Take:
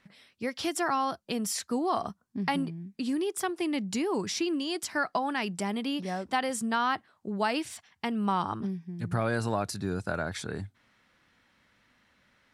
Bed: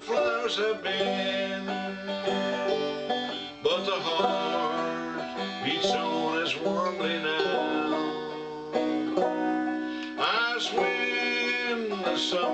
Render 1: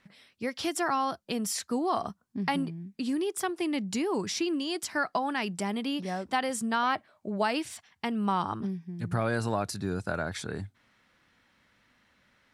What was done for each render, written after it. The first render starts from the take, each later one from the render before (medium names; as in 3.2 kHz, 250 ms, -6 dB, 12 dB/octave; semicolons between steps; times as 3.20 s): 6.83–7.42 s: small resonant body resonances 610/2300 Hz, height 13 dB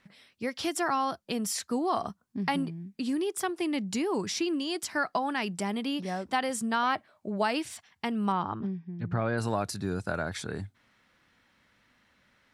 8.32–9.38 s: distance through air 240 m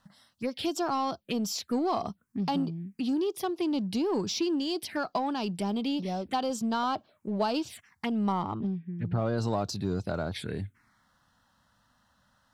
touch-sensitive phaser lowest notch 380 Hz, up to 2 kHz, full sweep at -28 dBFS; in parallel at -8 dB: hard clipper -32.5 dBFS, distortion -8 dB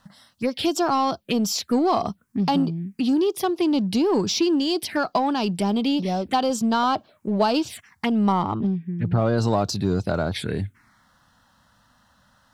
trim +8 dB